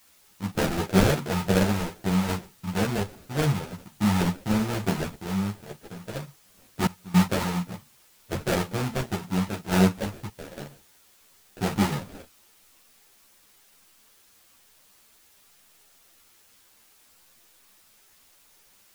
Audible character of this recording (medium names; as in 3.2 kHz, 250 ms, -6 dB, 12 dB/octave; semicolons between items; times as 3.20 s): aliases and images of a low sample rate 1.1 kHz, jitter 20%; random-step tremolo 3.5 Hz, depth 95%; a quantiser's noise floor 10-bit, dither triangular; a shimmering, thickened sound